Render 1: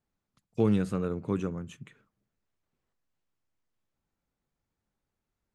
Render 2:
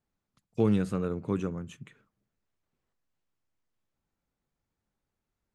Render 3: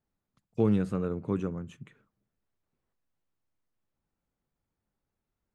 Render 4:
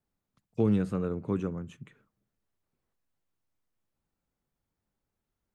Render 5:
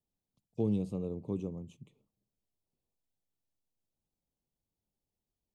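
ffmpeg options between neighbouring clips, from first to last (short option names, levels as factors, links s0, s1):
-af anull
-af "highshelf=f=2400:g=-7"
-filter_complex "[0:a]acrossover=split=440|3000[s0][s1][s2];[s1]acompressor=threshold=0.0251:ratio=6[s3];[s0][s3][s2]amix=inputs=3:normalize=0"
-af "asuperstop=centerf=1600:order=4:qfactor=0.8,volume=0.531"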